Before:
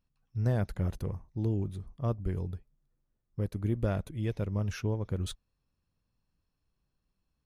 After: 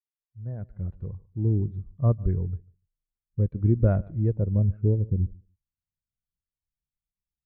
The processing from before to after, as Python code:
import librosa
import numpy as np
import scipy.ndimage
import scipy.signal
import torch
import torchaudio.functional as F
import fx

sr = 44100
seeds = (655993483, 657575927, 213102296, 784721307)

y = fx.fade_in_head(x, sr, length_s=1.91)
y = fx.filter_sweep_lowpass(y, sr, from_hz=2200.0, to_hz=240.0, start_s=3.93, end_s=5.37, q=0.92)
y = fx.echo_feedback(y, sr, ms=146, feedback_pct=24, wet_db=-17.0)
y = fx.spectral_expand(y, sr, expansion=1.5)
y = y * librosa.db_to_amplitude(8.0)